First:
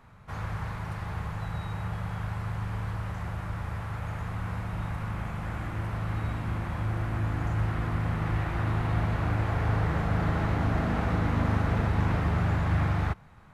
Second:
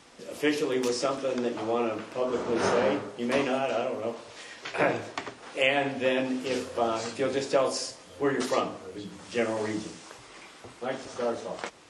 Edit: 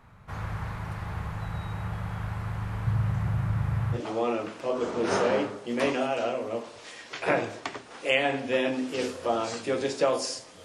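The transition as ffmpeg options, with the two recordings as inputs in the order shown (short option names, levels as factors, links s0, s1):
-filter_complex "[0:a]asettb=1/sr,asplit=3[s0][s1][s2];[s0]atrim=end=2.864[s3];[s1]atrim=start=2.86:end=4.01,asetpts=PTS-STARTPTS,afade=t=in:d=0.004:c=qsin,afade=t=out:st=1.146:d=0.004:c=qsin,equalizer=f=130:w=2:g=14[s4];[s2]atrim=start=4.006[s5];[s3][s4]acrossfade=d=0.004:c1=hsin:c2=qsin[s6];[s6][s5]acrossfade=d=0.004:c1=qsin:c2=hsin,apad=whole_dur=10.64,atrim=end=10.64,atrim=end=4.01,asetpts=PTS-STARTPTS[s7];[1:a]atrim=start=1.43:end=8.16,asetpts=PTS-STARTPTS[s8];[s7][s8]acrossfade=d=0.1:c1=tri:c2=tri"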